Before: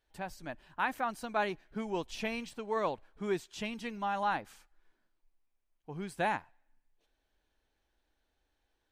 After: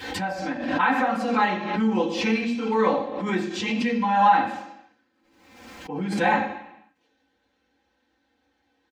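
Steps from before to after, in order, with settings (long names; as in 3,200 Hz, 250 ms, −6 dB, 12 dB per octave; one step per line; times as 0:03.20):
high-pass filter 56 Hz
low-shelf EQ 71 Hz −7.5 dB
notch filter 650 Hz, Q 12
comb filter 3.8 ms, depth 88%
convolution reverb RT60 0.85 s, pre-delay 3 ms, DRR −7.5 dB
background raised ahead of every attack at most 50 dB per second
level −8.5 dB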